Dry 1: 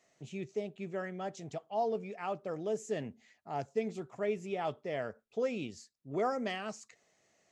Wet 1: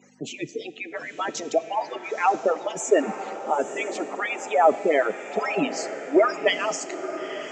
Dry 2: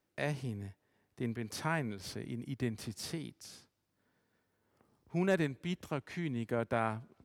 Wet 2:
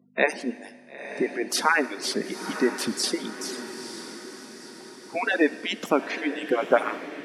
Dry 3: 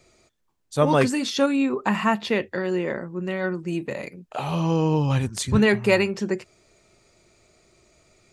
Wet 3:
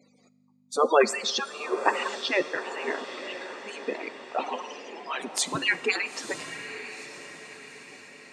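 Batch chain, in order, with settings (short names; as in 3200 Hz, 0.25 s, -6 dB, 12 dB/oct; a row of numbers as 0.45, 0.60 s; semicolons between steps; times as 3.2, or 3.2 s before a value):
median-filter separation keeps percussive; hum 50 Hz, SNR 21 dB; HPF 200 Hz 24 dB/oct; spectral gate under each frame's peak -20 dB strong; diffused feedback echo 0.936 s, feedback 49%, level -11 dB; Schroeder reverb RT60 1.8 s, combs from 25 ms, DRR 16 dB; normalise peaks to -6 dBFS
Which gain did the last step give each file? +19.5, +17.0, +2.5 dB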